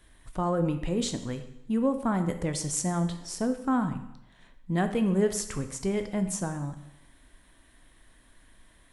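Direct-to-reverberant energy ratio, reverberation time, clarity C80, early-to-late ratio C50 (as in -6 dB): 7.5 dB, 0.85 s, 12.5 dB, 10.0 dB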